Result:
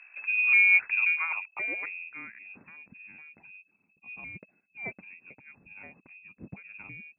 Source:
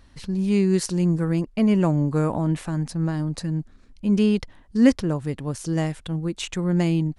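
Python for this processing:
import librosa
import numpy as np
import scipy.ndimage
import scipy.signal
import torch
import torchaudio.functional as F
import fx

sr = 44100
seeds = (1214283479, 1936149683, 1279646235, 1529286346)

y = fx.pitch_trill(x, sr, semitones=-9.0, every_ms=265)
y = fx.freq_invert(y, sr, carrier_hz=2600)
y = fx.filter_sweep_bandpass(y, sr, from_hz=1700.0, to_hz=200.0, start_s=0.94, end_s=2.37, q=2.3)
y = F.gain(torch.from_numpy(y), 4.5).numpy()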